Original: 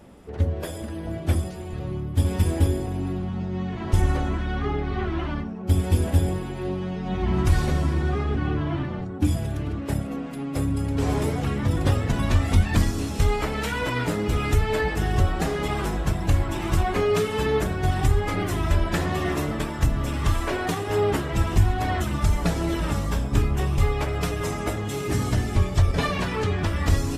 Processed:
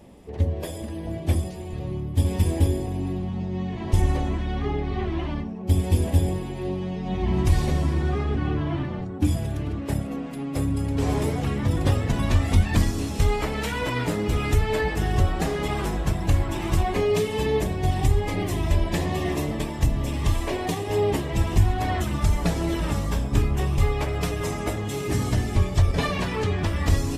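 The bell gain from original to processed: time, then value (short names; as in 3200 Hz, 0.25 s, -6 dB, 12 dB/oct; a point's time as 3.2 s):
bell 1400 Hz 0.37 oct
7.58 s -11.5 dB
8.05 s -4 dB
16.59 s -4 dB
17.18 s -15 dB
21.12 s -15 dB
21.76 s -4.5 dB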